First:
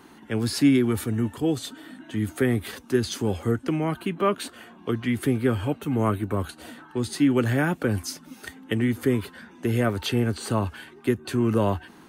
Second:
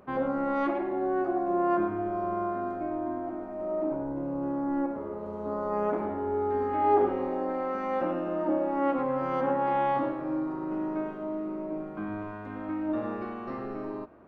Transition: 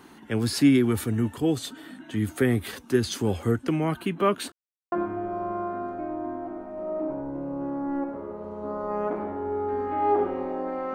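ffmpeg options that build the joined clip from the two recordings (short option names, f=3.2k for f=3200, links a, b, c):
-filter_complex "[0:a]apad=whole_dur=10.94,atrim=end=10.94,asplit=2[a][b];[a]atrim=end=4.52,asetpts=PTS-STARTPTS,afade=t=out:st=4.516:d=0.004:c=hsin[c];[b]atrim=start=4.52:end=4.92,asetpts=PTS-STARTPTS,volume=0[d];[1:a]atrim=start=1.74:end=7.76,asetpts=PTS-STARTPTS,afade=t=in:d=0.004:c=hsin[e];[c][d][e]concat=n=3:v=0:a=1"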